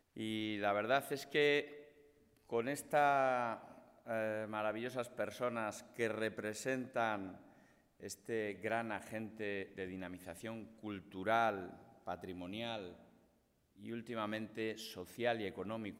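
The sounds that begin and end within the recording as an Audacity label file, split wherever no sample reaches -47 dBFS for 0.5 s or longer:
2.500000	7.370000	sound
8.030000	12.930000	sound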